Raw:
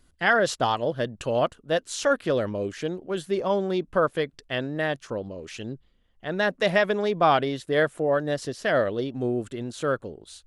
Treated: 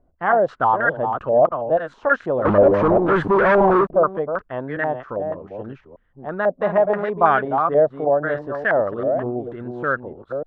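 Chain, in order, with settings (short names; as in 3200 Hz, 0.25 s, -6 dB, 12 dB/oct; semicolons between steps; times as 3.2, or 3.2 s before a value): reverse delay 0.298 s, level -6.5 dB; 2.45–3.91 sample leveller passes 5; stepped low-pass 6.2 Hz 670–1600 Hz; gain -1 dB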